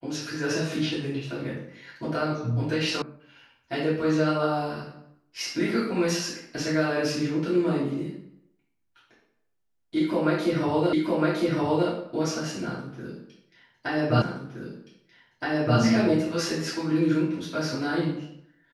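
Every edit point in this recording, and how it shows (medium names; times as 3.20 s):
3.02 s: sound stops dead
10.93 s: repeat of the last 0.96 s
14.22 s: repeat of the last 1.57 s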